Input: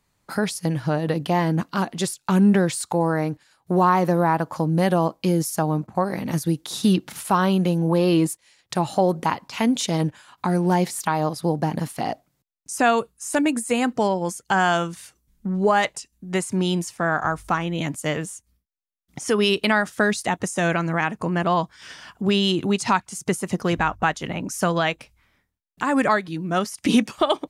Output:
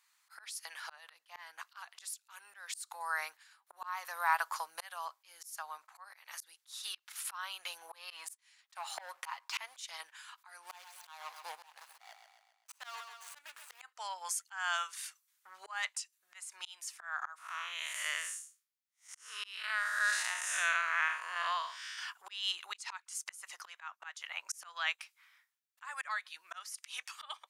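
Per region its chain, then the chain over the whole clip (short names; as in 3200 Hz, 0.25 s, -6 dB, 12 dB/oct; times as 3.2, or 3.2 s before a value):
1.97–5.05 high shelf 8400 Hz +5.5 dB + mismatched tape noise reduction decoder only
8.1–9.8 bell 690 Hz +6 dB 2 oct + comb 7.4 ms, depth 33% + sample leveller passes 1
10.63–13.81 median filter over 25 samples + high shelf 5500 Hz +5 dB + feedback echo 0.132 s, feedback 37%, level -13.5 dB
17.38–21.98 time blur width 0.187 s + bell 810 Hz -11 dB 0.24 oct
whole clip: inverse Chebyshev high-pass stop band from 250 Hz, stop band 70 dB; auto swell 0.638 s; gain +1 dB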